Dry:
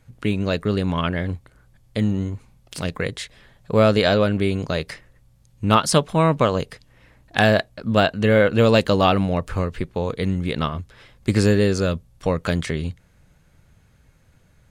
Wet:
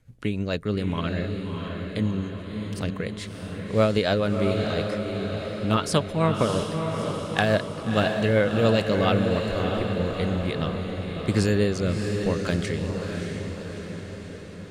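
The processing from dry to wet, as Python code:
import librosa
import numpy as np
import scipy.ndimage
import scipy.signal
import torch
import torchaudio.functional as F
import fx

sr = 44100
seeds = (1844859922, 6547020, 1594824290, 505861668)

y = fx.rotary_switch(x, sr, hz=7.0, then_hz=0.9, switch_at_s=9.24)
y = fx.echo_diffused(y, sr, ms=646, feedback_pct=60, wet_db=-5.0)
y = y * 10.0 ** (-3.5 / 20.0)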